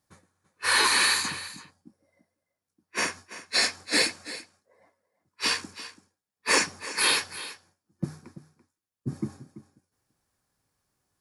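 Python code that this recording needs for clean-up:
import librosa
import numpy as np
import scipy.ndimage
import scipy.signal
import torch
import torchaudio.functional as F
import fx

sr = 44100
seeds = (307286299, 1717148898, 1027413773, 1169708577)

y = fx.fix_declip(x, sr, threshold_db=-11.5)
y = fx.fix_echo_inverse(y, sr, delay_ms=336, level_db=-15.0)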